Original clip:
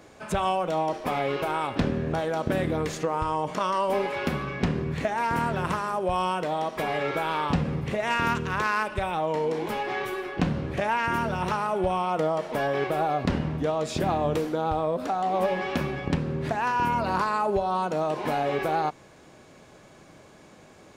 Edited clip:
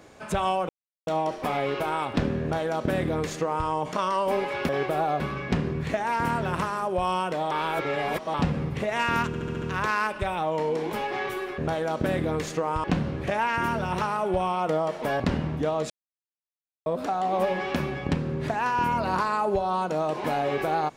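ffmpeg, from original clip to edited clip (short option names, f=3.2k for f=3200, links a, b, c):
-filter_complex "[0:a]asplit=16[a][b][c][d][e][f][g][h][i][j][k][l][m][n][o][p];[a]atrim=end=0.69,asetpts=PTS-STARTPTS,afade=t=out:st=0.686:d=0.004:c=hsin,apad=pad_dur=0.38[q];[b]atrim=start=0.69:end=4.312,asetpts=PTS-STARTPTS,afade=t=in:d=0.004:c=hsin[r];[c]atrim=start=12.698:end=13.212[s];[d]atrim=start=4.308:end=6.622[t];[e]atrim=start=6.618:end=7.452,asetpts=PTS-STARTPTS,areverse[u];[f]atrim=start=7.448:end=8.452[v];[g]atrim=start=8.378:end=8.452[w];[h]atrim=start=8.378:end=8.452[x];[i]atrim=start=8.378:end=8.452[y];[j]atrim=start=8.378:end=8.452[z];[k]atrim=start=8.378:end=10.342[aa];[l]atrim=start=2.038:end=3.302[ab];[m]atrim=start=10.338:end=12.702[ac];[n]atrim=start=13.208:end=13.91,asetpts=PTS-STARTPTS,afade=t=out:st=0.698:d=0.004:c=hsin[ad];[o]atrim=start=13.91:end=14.87,asetpts=PTS-STARTPTS,volume=0[ae];[p]atrim=start=14.87,asetpts=PTS-STARTPTS,afade=t=in:d=0.004:c=hsin[af];[q][r]concat=n=2:v=0:a=1[ag];[ag][s]acrossfade=d=0.004:c1=hsin:c2=hsin[ah];[ah][t]acrossfade=d=0.004:c1=hsin:c2=hsin[ai];[ai][u]acrossfade=d=0.004:c1=hsin:c2=hsin[aj];[aj][v]acrossfade=d=0.004:c1=hsin:c2=hsin[ak];[ak][w]acrossfade=d=0.004:c1=hsin:c2=hsin[al];[al][x]acrossfade=d=0.004:c1=hsin:c2=hsin[am];[am][y]acrossfade=d=0.004:c1=hsin:c2=hsin[an];[an][z]acrossfade=d=0.004:c1=hsin:c2=hsin[ao];[ao][aa]acrossfade=d=0.004:c1=hsin:c2=hsin[ap];[ap][ab]acrossfade=d=0.004:c1=hsin:c2=hsin[aq];[aq][ac]acrossfade=d=0.004:c1=hsin:c2=hsin[ar];[ad][ae][af]concat=n=3:v=0:a=1[as];[ar][as]acrossfade=d=0.004:c1=hsin:c2=hsin"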